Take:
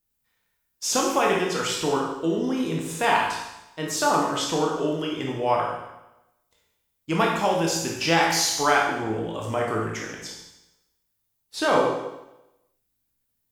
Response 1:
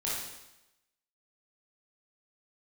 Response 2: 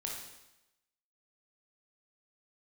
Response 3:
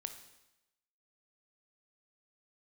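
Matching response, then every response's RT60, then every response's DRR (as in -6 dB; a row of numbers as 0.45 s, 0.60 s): 2; 0.95 s, 0.95 s, 0.95 s; -7.5 dB, -2.0 dB, 7.0 dB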